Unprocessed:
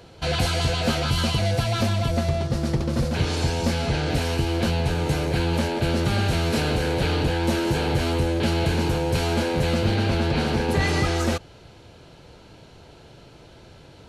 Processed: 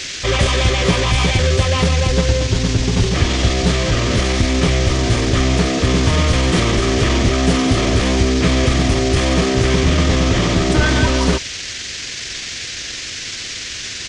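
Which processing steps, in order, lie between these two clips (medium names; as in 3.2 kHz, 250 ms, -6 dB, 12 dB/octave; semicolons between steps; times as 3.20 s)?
band noise 2.1–8.7 kHz -35 dBFS; pitch shift -4.5 st; trim +7.5 dB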